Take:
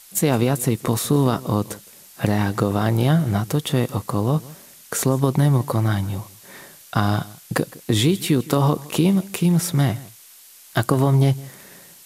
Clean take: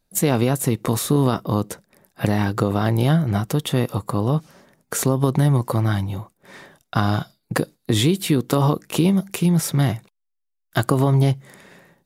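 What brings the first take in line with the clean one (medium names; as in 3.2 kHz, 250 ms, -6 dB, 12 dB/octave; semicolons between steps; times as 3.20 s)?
noise reduction 22 dB, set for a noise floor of -47 dBFS; inverse comb 162 ms -21 dB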